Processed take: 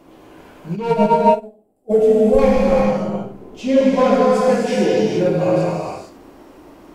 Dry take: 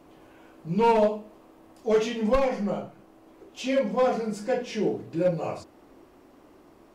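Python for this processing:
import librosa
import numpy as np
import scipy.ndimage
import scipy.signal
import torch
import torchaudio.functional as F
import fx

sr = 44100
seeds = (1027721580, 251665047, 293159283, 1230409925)

y = fx.spec_box(x, sr, start_s=0.91, length_s=1.48, low_hz=840.0, high_hz=7200.0, gain_db=-17)
y = fx.tilt_shelf(y, sr, db=7.0, hz=670.0, at=(2.78, 3.81))
y = y + 10.0 ** (-12.5 / 20.0) * np.pad(y, (int(75 * sr / 1000.0), 0))[:len(y)]
y = fx.rev_gated(y, sr, seeds[0], gate_ms=490, shape='flat', drr_db=-4.5)
y = fx.upward_expand(y, sr, threshold_db=-27.0, expansion=2.5, at=(0.75, 1.89), fade=0.02)
y = y * 10.0 ** (5.0 / 20.0)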